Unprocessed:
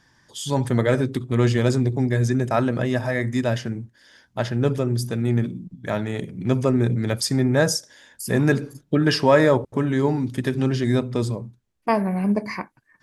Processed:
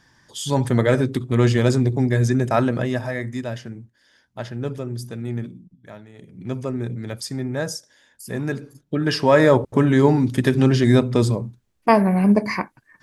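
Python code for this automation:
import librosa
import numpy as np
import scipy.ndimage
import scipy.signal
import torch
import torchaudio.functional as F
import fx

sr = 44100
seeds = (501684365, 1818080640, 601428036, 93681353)

y = fx.gain(x, sr, db=fx.line((2.64, 2.0), (3.49, -6.5), (5.46, -6.5), (6.13, -19.0), (6.35, -7.0), (8.66, -7.0), (9.74, 5.5)))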